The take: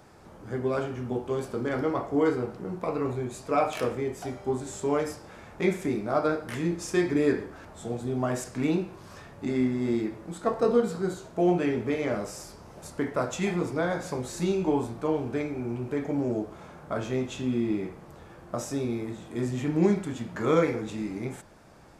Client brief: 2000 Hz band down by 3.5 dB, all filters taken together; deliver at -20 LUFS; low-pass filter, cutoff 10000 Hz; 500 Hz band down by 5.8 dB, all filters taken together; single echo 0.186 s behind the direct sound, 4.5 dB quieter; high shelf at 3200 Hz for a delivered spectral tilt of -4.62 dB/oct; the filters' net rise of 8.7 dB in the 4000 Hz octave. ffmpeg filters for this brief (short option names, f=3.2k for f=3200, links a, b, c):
-af "lowpass=10k,equalizer=f=500:t=o:g=-7.5,equalizer=f=2k:t=o:g=-9,highshelf=f=3.2k:g=9,equalizer=f=4k:t=o:g=7,aecho=1:1:186:0.596,volume=10.5dB"